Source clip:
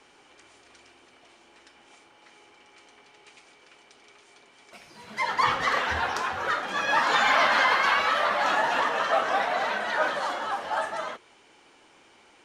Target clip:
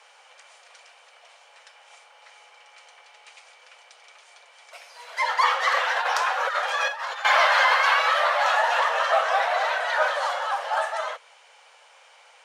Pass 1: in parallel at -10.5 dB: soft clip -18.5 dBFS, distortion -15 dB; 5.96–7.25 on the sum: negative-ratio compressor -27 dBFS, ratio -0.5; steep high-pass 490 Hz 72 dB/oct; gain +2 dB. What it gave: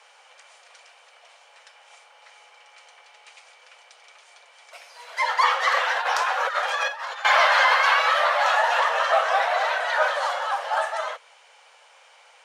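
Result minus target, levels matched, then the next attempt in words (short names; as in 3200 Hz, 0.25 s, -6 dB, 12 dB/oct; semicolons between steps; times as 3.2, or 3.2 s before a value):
soft clip: distortion -9 dB
in parallel at -10.5 dB: soft clip -29.5 dBFS, distortion -6 dB; 5.96–7.25 on the sum: negative-ratio compressor -27 dBFS, ratio -0.5; steep high-pass 490 Hz 72 dB/oct; gain +2 dB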